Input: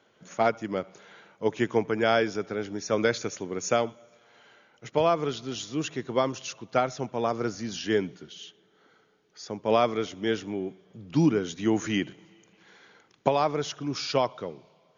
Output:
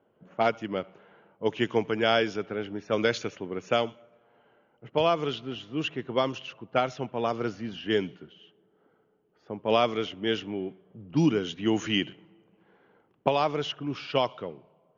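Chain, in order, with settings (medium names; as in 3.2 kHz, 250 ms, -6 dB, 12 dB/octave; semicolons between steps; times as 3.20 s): level-controlled noise filter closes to 830 Hz, open at -19 dBFS; peaking EQ 2.9 kHz +11 dB 0.34 oct; trim -1 dB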